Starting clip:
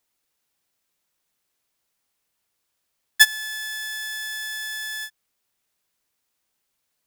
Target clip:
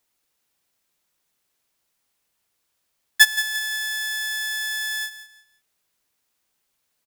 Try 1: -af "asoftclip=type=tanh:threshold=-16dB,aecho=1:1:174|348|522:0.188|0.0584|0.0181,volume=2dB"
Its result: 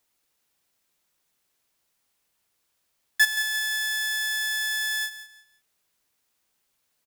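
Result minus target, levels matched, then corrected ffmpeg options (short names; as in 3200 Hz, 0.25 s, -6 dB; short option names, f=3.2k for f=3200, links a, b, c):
soft clip: distortion +14 dB
-af "asoftclip=type=tanh:threshold=-4dB,aecho=1:1:174|348|522:0.188|0.0584|0.0181,volume=2dB"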